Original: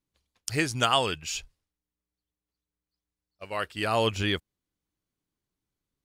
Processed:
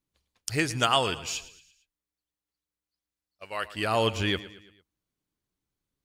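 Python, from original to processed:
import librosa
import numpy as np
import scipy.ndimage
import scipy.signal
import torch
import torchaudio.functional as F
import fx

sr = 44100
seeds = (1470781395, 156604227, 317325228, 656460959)

y = fx.low_shelf(x, sr, hz=450.0, db=-8.0, at=(1.27, 3.65))
y = fx.echo_feedback(y, sr, ms=113, feedback_pct=49, wet_db=-16.5)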